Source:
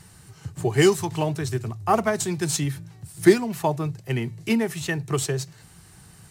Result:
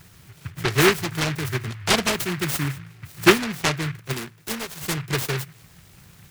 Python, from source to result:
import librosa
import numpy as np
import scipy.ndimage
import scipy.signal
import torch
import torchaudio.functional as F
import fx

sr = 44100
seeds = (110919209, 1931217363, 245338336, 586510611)

y = fx.peak_eq(x, sr, hz=fx.line((4.12, 74.0), (4.81, 280.0)), db=-14.0, octaves=2.5, at=(4.12, 4.81), fade=0.02)
y = fx.noise_mod_delay(y, sr, seeds[0], noise_hz=1700.0, depth_ms=0.31)